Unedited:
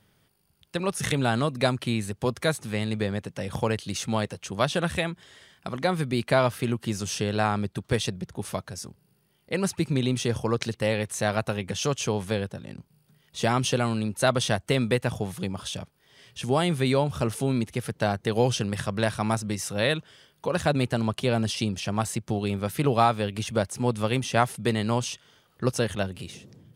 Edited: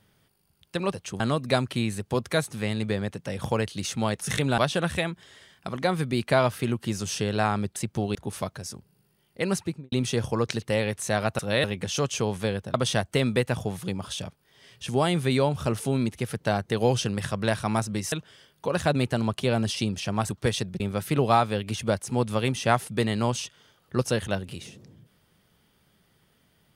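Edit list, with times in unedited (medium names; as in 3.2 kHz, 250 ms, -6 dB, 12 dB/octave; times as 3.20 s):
0.93–1.31 s: swap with 4.31–4.58 s
7.76–8.27 s: swap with 22.09–22.48 s
9.65–10.04 s: studio fade out
12.61–14.29 s: delete
19.67–19.92 s: move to 11.51 s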